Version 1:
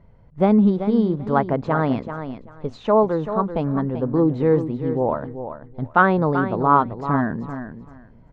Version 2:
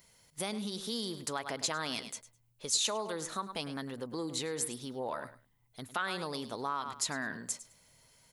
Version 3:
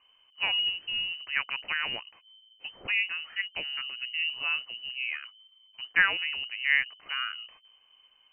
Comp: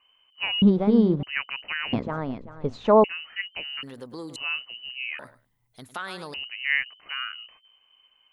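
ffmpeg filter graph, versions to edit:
-filter_complex "[0:a]asplit=2[a][b];[1:a]asplit=2[c][d];[2:a]asplit=5[e][f][g][h][i];[e]atrim=end=0.622[j];[a]atrim=start=0.618:end=1.232[k];[f]atrim=start=1.228:end=1.932[l];[b]atrim=start=1.928:end=3.042[m];[g]atrim=start=3.038:end=3.832[n];[c]atrim=start=3.828:end=4.362[o];[h]atrim=start=4.358:end=5.192[p];[d]atrim=start=5.188:end=6.342[q];[i]atrim=start=6.338[r];[j][k]acrossfade=d=0.004:c1=hsin:c2=hsin[s];[s][l]acrossfade=d=0.004:c1=hsin:c2=hsin[t];[t][m]acrossfade=d=0.004:c1=hsin:c2=hsin[u];[u][n]acrossfade=d=0.004:c1=hsin:c2=hsin[v];[v][o]acrossfade=d=0.004:c1=hsin:c2=hsin[w];[w][p]acrossfade=d=0.004:c1=hsin:c2=hsin[x];[x][q]acrossfade=d=0.004:c1=hsin:c2=hsin[y];[y][r]acrossfade=d=0.004:c1=hsin:c2=hsin"

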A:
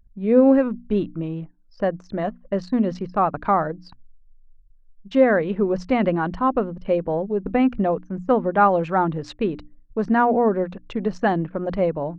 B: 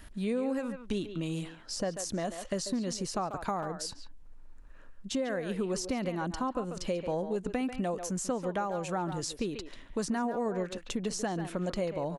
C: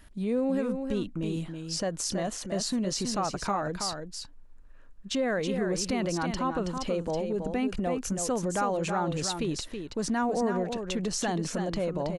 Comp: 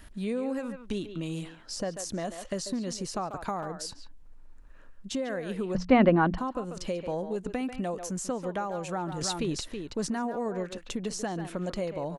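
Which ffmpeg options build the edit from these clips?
-filter_complex "[1:a]asplit=3[a][b][c];[a]atrim=end=5.752[d];[0:a]atrim=start=5.748:end=6.382[e];[b]atrim=start=6.378:end=9.212[f];[2:a]atrim=start=9.208:end=10.072[g];[c]atrim=start=10.068[h];[d][e]acrossfade=d=0.004:c1=hsin:c2=hsin[i];[i][f]acrossfade=d=0.004:c1=hsin:c2=hsin[j];[j][g]acrossfade=d=0.004:c1=hsin:c2=hsin[k];[k][h]acrossfade=d=0.004:c1=hsin:c2=hsin"

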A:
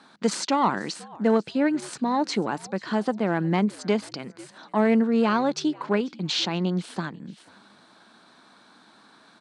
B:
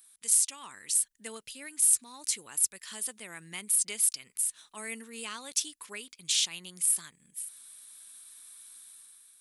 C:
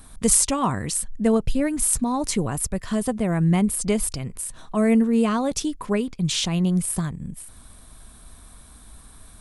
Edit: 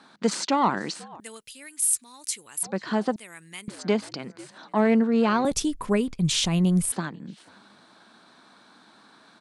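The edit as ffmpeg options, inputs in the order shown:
-filter_complex "[1:a]asplit=2[a][b];[0:a]asplit=4[c][d][e][f];[c]atrim=end=1.202[g];[a]atrim=start=1.198:end=2.632[h];[d]atrim=start=2.628:end=3.162[i];[b]atrim=start=3.158:end=3.682[j];[e]atrim=start=3.678:end=5.452[k];[2:a]atrim=start=5.448:end=6.922[l];[f]atrim=start=6.918[m];[g][h]acrossfade=d=0.004:c1=hsin:c2=hsin[n];[n][i]acrossfade=d=0.004:c1=hsin:c2=hsin[o];[o][j]acrossfade=d=0.004:c1=hsin:c2=hsin[p];[p][k]acrossfade=d=0.004:c1=hsin:c2=hsin[q];[q][l]acrossfade=d=0.004:c1=hsin:c2=hsin[r];[r][m]acrossfade=d=0.004:c1=hsin:c2=hsin"

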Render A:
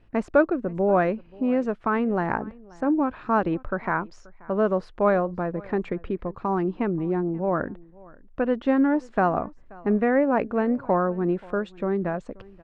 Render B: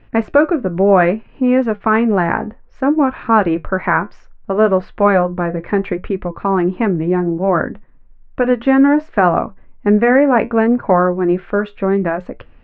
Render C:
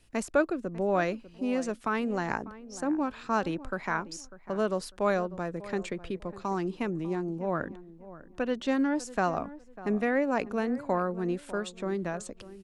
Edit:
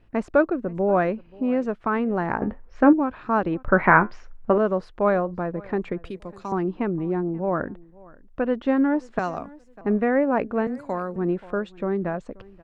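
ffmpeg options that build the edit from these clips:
-filter_complex "[1:a]asplit=2[a][b];[2:a]asplit=3[c][d][e];[0:a]asplit=6[f][g][h][i][j][k];[f]atrim=end=2.422[l];[a]atrim=start=2.418:end=2.932[m];[g]atrim=start=2.928:end=3.682[n];[b]atrim=start=3.678:end=4.582[o];[h]atrim=start=4.578:end=6.052[p];[c]atrim=start=6.048:end=6.522[q];[i]atrim=start=6.518:end=9.192[r];[d]atrim=start=9.188:end=9.812[s];[j]atrim=start=9.808:end=10.672[t];[e]atrim=start=10.668:end=11.162[u];[k]atrim=start=11.158[v];[l][m]acrossfade=d=0.004:c1=hsin:c2=hsin[w];[w][n]acrossfade=d=0.004:c1=hsin:c2=hsin[x];[x][o]acrossfade=d=0.004:c1=hsin:c2=hsin[y];[y][p]acrossfade=d=0.004:c1=hsin:c2=hsin[z];[z][q]acrossfade=d=0.004:c1=hsin:c2=hsin[aa];[aa][r]acrossfade=d=0.004:c1=hsin:c2=hsin[ab];[ab][s]acrossfade=d=0.004:c1=hsin:c2=hsin[ac];[ac][t]acrossfade=d=0.004:c1=hsin:c2=hsin[ad];[ad][u]acrossfade=d=0.004:c1=hsin:c2=hsin[ae];[ae][v]acrossfade=d=0.004:c1=hsin:c2=hsin"

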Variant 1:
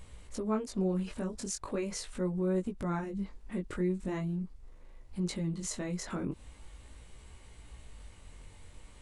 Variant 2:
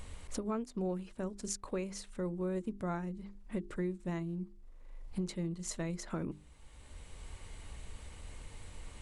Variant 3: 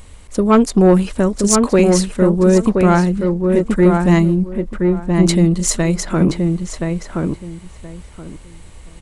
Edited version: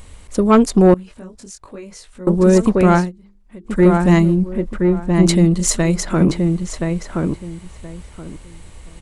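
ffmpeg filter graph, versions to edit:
-filter_complex "[2:a]asplit=3[a][b][c];[a]atrim=end=0.942[d];[0:a]atrim=start=0.938:end=2.272[e];[b]atrim=start=2.268:end=3.12[f];[1:a]atrim=start=2.96:end=3.8[g];[c]atrim=start=3.64[h];[d][e]acrossfade=d=0.004:c1=hsin:c2=hsin[i];[i][f]acrossfade=d=0.004:c1=hsin:c2=hsin[j];[j][g]acrossfade=d=0.16:c1=tri:c2=tri[k];[k][h]acrossfade=d=0.16:c1=tri:c2=tri"

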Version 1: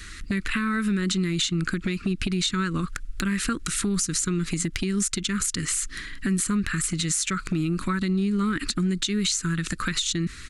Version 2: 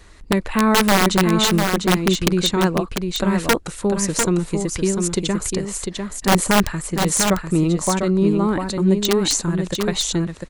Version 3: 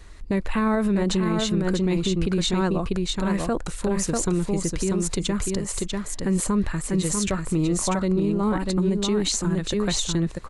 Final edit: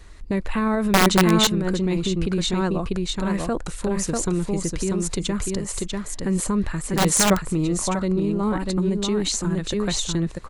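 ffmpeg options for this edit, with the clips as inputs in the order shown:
-filter_complex "[1:a]asplit=2[a][b];[2:a]asplit=3[c][d][e];[c]atrim=end=0.942[f];[a]atrim=start=0.938:end=1.472[g];[d]atrim=start=1.468:end=6.942[h];[b]atrim=start=6.938:end=7.422[i];[e]atrim=start=7.418[j];[f][g]acrossfade=d=0.004:c1=hsin:c2=hsin[k];[k][h]acrossfade=d=0.004:c1=hsin:c2=hsin[l];[l][i]acrossfade=d=0.004:c1=hsin:c2=hsin[m];[m][j]acrossfade=d=0.004:c1=hsin:c2=hsin"

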